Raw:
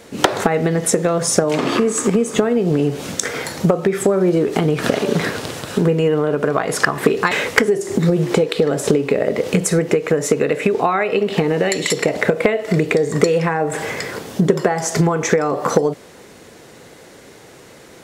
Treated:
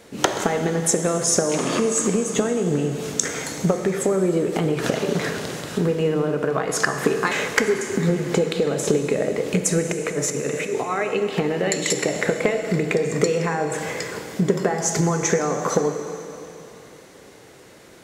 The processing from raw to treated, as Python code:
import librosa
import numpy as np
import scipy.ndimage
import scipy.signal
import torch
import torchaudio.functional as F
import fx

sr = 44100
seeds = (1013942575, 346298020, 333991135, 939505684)

y = fx.dynamic_eq(x, sr, hz=6600.0, q=2.9, threshold_db=-42.0, ratio=4.0, max_db=8)
y = fx.over_compress(y, sr, threshold_db=-19.0, ratio=-0.5, at=(9.86, 11.02))
y = fx.rev_plate(y, sr, seeds[0], rt60_s=3.1, hf_ratio=1.0, predelay_ms=0, drr_db=6.5)
y = y * librosa.db_to_amplitude(-5.5)